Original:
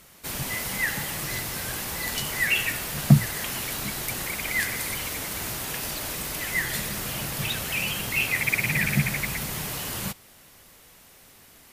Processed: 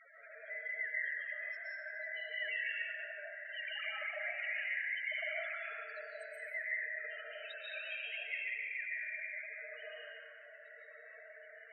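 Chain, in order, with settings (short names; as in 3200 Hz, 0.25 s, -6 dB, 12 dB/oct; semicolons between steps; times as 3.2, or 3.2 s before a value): 3.45–5.58 sine-wave speech; compressor 6:1, threshold -41 dBFS, peak gain reduction 28.5 dB; limiter -36 dBFS, peak gain reduction 9.5 dB; rippled Chebyshev high-pass 440 Hz, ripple 9 dB; loudest bins only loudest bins 8; reverb RT60 1.8 s, pre-delay 0.105 s, DRR -5.5 dB; gain +7 dB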